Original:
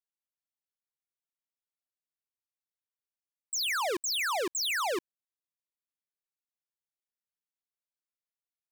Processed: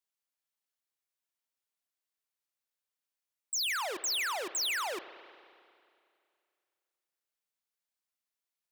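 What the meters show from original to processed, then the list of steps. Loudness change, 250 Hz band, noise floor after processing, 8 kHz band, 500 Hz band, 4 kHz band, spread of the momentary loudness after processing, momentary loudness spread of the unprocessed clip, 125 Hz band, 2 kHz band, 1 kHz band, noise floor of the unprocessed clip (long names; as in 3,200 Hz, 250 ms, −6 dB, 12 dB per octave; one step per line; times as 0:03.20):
−2.0 dB, −8.5 dB, below −85 dBFS, −1.0 dB, −7.0 dB, −1.5 dB, 8 LU, 5 LU, can't be measured, −2.5 dB, −4.0 dB, below −85 dBFS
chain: low-shelf EQ 340 Hz −10 dB
brickwall limiter −34 dBFS, peak gain reduction 8 dB
spring reverb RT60 2.4 s, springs 30/45 ms, chirp 50 ms, DRR 12.5 dB
level +4 dB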